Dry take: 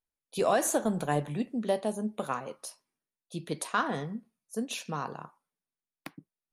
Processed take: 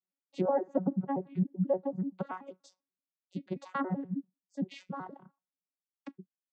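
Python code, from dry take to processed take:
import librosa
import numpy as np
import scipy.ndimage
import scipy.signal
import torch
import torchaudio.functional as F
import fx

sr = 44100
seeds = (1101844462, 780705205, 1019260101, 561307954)

y = fx.vocoder_arp(x, sr, chord='bare fifth', root=54, every_ms=96)
y = fx.env_lowpass_down(y, sr, base_hz=950.0, full_db=-26.0)
y = fx.dereverb_blind(y, sr, rt60_s=1.9)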